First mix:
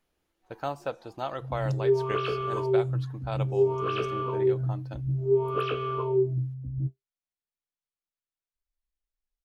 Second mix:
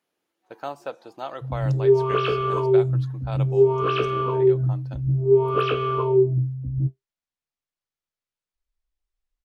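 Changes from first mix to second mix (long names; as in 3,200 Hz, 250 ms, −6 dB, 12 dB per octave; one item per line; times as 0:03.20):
speech: add high-pass filter 220 Hz 12 dB per octave
background +6.5 dB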